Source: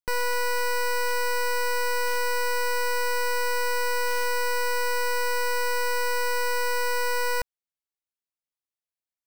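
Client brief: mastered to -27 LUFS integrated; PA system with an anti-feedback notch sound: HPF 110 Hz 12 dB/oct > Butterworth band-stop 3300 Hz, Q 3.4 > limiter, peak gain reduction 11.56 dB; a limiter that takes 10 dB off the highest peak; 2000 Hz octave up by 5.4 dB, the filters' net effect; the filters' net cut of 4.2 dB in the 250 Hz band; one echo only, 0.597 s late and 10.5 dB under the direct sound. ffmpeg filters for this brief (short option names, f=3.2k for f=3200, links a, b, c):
-af "equalizer=f=250:t=o:g=-5.5,equalizer=f=2k:t=o:g=7.5,alimiter=level_in=2.5dB:limit=-24dB:level=0:latency=1,volume=-2.5dB,highpass=110,asuperstop=centerf=3300:order=8:qfactor=3.4,aecho=1:1:597:0.299,volume=17.5dB,alimiter=limit=-20dB:level=0:latency=1"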